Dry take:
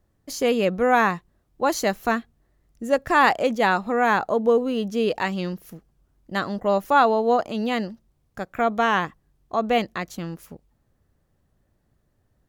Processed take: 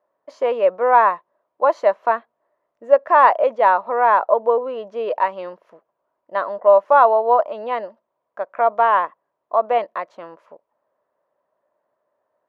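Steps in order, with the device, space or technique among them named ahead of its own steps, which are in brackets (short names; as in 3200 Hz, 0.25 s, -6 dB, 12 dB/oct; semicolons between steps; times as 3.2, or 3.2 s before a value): tin-can telephone (BPF 520–2200 Hz; small resonant body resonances 610/960 Hz, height 16 dB, ringing for 20 ms); gain -3.5 dB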